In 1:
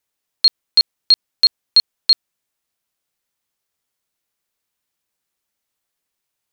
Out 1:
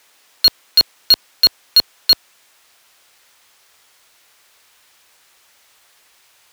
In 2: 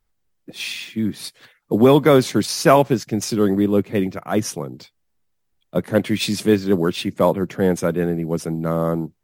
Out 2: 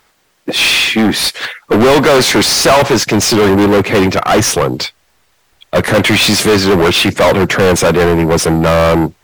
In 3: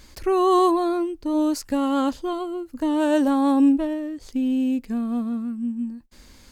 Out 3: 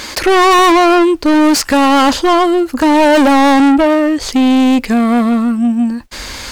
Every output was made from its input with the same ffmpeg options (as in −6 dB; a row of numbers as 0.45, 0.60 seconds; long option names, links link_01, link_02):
-filter_complex "[0:a]asubboost=boost=5.5:cutoff=84,asplit=2[link_01][link_02];[link_02]highpass=frequency=720:poles=1,volume=36dB,asoftclip=type=tanh:threshold=-1.5dB[link_03];[link_01][link_03]amix=inputs=2:normalize=0,lowpass=frequency=4500:poles=1,volume=-6dB"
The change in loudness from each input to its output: +1.0, +9.0, +12.5 LU